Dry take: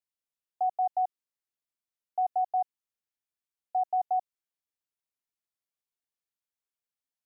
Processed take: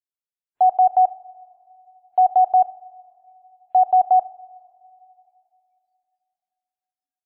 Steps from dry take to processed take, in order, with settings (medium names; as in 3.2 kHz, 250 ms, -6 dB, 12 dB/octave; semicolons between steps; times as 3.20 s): spectral noise reduction 27 dB; two-slope reverb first 0.41 s, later 2.9 s, from -18 dB, DRR 17 dB; loudness maximiser +26 dB; trim -8.5 dB